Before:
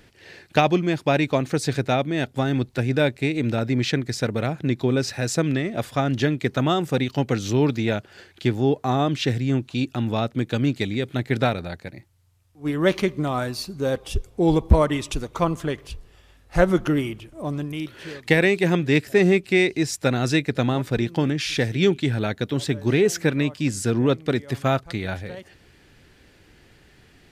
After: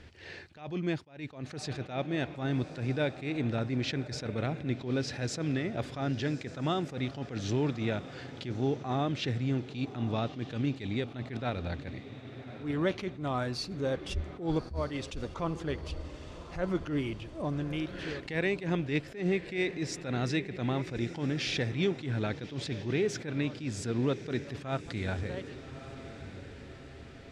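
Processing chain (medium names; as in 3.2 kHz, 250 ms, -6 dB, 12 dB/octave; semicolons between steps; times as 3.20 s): low-pass 5.8 kHz 12 dB/octave; peaking EQ 77 Hz +13 dB 0.32 oct; compression 2:1, threshold -32 dBFS, peak gain reduction 16 dB; echo that smears into a reverb 1205 ms, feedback 49%, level -14 dB; attacks held to a fixed rise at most 140 dB/s; trim -1 dB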